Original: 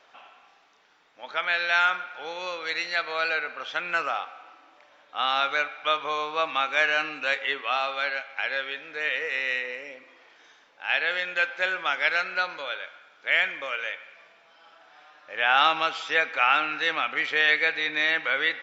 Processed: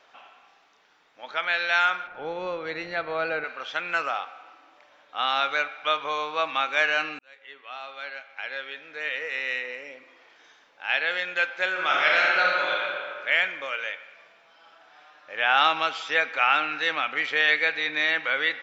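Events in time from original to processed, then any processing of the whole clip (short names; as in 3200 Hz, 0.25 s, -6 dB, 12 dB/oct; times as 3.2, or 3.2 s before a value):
2.07–3.44 tilt -5 dB/oct
7.19–10.84 fade in equal-power
11.71–12.83 reverb throw, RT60 2.2 s, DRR -4 dB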